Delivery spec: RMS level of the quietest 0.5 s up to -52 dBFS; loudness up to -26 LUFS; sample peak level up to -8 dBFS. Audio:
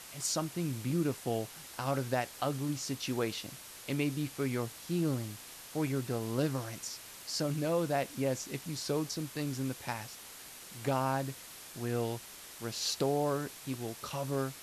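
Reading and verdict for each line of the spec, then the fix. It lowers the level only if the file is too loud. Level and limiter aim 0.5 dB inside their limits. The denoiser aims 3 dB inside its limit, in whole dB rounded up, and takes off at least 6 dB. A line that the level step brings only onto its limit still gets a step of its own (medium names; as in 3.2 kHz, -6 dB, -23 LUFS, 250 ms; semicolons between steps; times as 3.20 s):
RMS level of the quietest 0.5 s -50 dBFS: fail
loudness -35.0 LUFS: pass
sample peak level -17.5 dBFS: pass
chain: noise reduction 6 dB, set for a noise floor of -50 dBFS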